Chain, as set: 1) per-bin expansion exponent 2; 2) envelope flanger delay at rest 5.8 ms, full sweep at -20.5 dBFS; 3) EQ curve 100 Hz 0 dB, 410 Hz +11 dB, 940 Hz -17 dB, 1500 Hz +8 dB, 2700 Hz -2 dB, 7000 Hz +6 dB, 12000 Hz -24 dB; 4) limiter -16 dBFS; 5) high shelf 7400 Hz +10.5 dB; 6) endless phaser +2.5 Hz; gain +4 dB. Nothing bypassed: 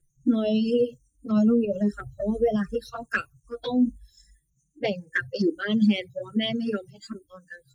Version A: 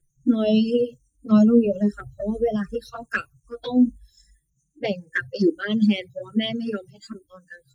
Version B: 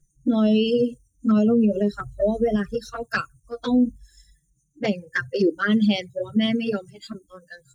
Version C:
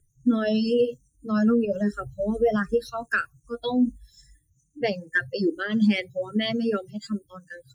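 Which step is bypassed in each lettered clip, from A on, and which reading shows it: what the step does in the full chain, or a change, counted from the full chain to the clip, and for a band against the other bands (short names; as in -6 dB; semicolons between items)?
4, crest factor change +2.5 dB; 6, 1 kHz band +1.5 dB; 2, 1 kHz band +3.5 dB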